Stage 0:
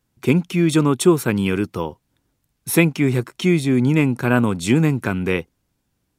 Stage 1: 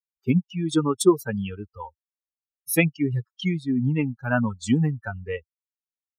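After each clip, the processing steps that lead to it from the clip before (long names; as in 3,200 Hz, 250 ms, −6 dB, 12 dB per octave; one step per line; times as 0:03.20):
spectral dynamics exaggerated over time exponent 3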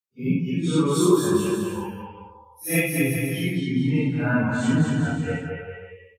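random phases in long frames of 200 ms
on a send: bouncing-ball delay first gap 220 ms, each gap 0.8×, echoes 5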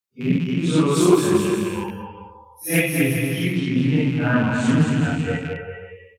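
loose part that buzzes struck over −32 dBFS, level −29 dBFS
highs frequency-modulated by the lows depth 0.22 ms
level +3 dB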